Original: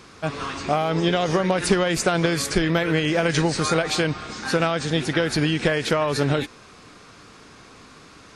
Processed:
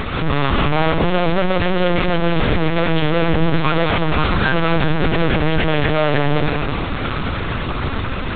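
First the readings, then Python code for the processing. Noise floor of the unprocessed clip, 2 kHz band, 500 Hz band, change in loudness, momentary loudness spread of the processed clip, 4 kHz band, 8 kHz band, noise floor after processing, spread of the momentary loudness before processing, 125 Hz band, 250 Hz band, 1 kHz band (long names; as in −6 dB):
−47 dBFS, +5.0 dB, +3.5 dB, +4.0 dB, 6 LU, +2.5 dB, below −40 dB, −22 dBFS, 6 LU, +7.0 dB, +4.5 dB, +6.5 dB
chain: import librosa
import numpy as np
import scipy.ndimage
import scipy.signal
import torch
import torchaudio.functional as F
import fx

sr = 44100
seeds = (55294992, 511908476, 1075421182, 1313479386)

y = fx.hpss_only(x, sr, part='harmonic')
y = fx.low_shelf(y, sr, hz=220.0, db=5.0)
y = fx.notch(y, sr, hz=730.0, q=12.0)
y = fx.fuzz(y, sr, gain_db=49.0, gate_db=-52.0)
y = fx.echo_opening(y, sr, ms=126, hz=750, octaves=1, feedback_pct=70, wet_db=-6)
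y = fx.lpc_vocoder(y, sr, seeds[0], excitation='pitch_kept', order=10)
y = F.gain(torch.from_numpy(y), -2.5).numpy()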